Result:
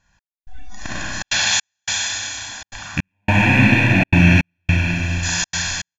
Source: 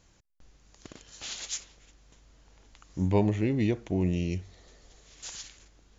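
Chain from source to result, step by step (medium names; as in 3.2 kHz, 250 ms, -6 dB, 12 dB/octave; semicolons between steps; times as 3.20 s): rattle on loud lows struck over -33 dBFS, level -27 dBFS; peak limiter -23 dBFS, peak gain reduction 11 dB; peaking EQ 1.6 kHz +12 dB 1.4 oct; delay 409 ms -13 dB; Schroeder reverb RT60 2.7 s, combs from 31 ms, DRR -7.5 dB; spectral noise reduction 20 dB; trance gate "xx...xxxxxxxx.x" 160 bpm -60 dB; comb 1.2 ms, depth 95%; in parallel at 0 dB: compression, threshold -27 dBFS, peak gain reduction 13 dB; on the sum: trim +4 dB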